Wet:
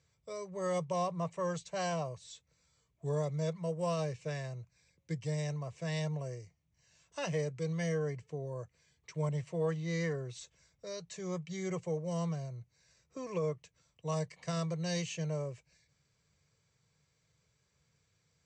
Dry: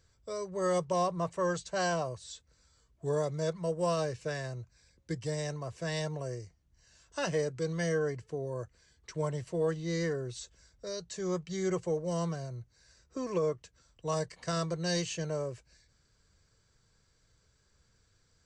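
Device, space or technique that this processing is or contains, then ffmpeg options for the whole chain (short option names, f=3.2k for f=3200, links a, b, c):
car door speaker: -filter_complex "[0:a]highpass=95,equalizer=f=150:t=q:w=4:g=7,equalizer=f=240:t=q:w=4:g=-5,equalizer=f=350:t=q:w=4:g=-5,equalizer=f=1.5k:t=q:w=4:g=-7,equalizer=f=2.3k:t=q:w=4:g=6,equalizer=f=4.7k:t=q:w=4:g=-4,lowpass=f=8.2k:w=0.5412,lowpass=f=8.2k:w=1.3066,asettb=1/sr,asplit=3[a][b][c];[a]atrim=end=9.294[d];[b]atrim=start=9.29:end=11.18,asetpts=PTS-STARTPTS,afade=t=in:d=0.004:c=qsin,afade=t=out:st=1.886:d=0.004:c=qsin,adynamicequalizer=threshold=0.00501:dfrequency=1300:dqfactor=0.7:tfrequency=1300:tqfactor=0.7:attack=5:release=100:ratio=0.375:range=2:mode=boostabove:tftype=bell[e];[c]atrim=start=11.176[f];[d][e]acrossfade=d=0.004:c1=hsin:c2=qsin[g];[g][f]acrossfade=d=0.004:c1=qsin:c2=hsin,volume=-3.5dB"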